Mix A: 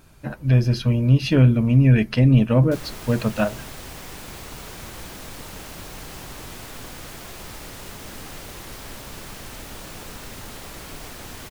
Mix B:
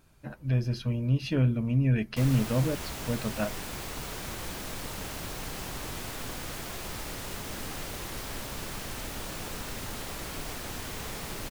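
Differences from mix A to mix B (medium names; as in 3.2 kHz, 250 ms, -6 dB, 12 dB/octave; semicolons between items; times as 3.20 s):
speech -10.0 dB; background: entry -0.55 s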